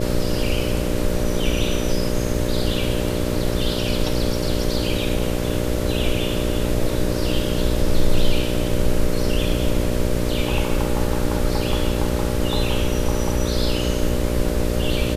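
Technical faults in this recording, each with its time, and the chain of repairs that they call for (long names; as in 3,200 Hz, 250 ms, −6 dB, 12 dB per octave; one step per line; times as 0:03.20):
mains buzz 60 Hz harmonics 10 −24 dBFS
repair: hum removal 60 Hz, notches 10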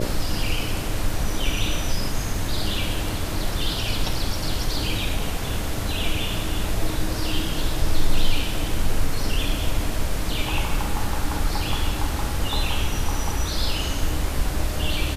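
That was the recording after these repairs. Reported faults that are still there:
none of them is left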